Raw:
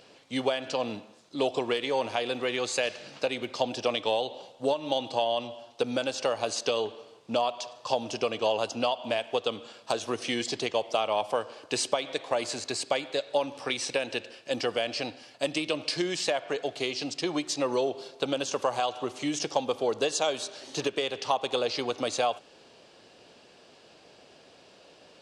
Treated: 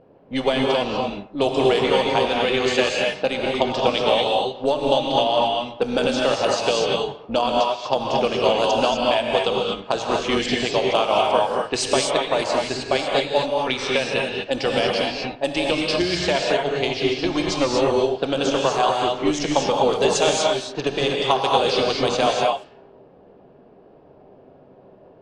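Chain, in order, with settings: AM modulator 280 Hz, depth 30%; level-controlled noise filter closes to 610 Hz, open at -25.5 dBFS; gated-style reverb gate 270 ms rising, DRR -1.5 dB; trim +8 dB

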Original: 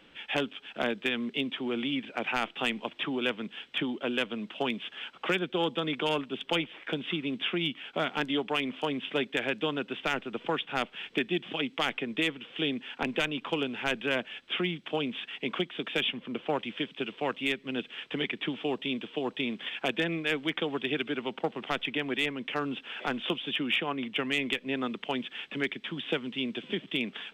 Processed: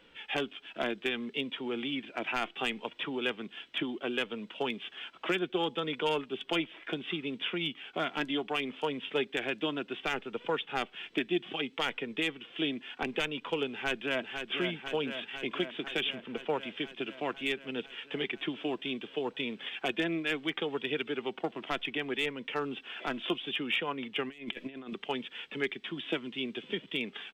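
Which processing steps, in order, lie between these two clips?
24.29–24.94 s: compressor with a negative ratio -37 dBFS, ratio -0.5; flange 0.67 Hz, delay 2 ms, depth 1.1 ms, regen +56%; 13.71–14.24 s: echo throw 500 ms, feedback 75%, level -6.5 dB; trim +1.5 dB

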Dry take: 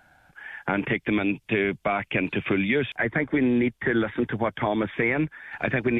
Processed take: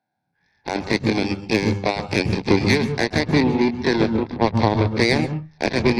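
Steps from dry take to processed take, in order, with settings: every event in the spectrogram widened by 60 ms; high-pass 120 Hz 24 dB/octave; Chebyshev shaper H 4 -19 dB, 6 -23 dB, 7 -16 dB, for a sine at -6 dBFS; reverberation RT60 0.30 s, pre-delay 127 ms, DRR 9 dB; upward expansion 1.5:1, over -29 dBFS; trim -1 dB

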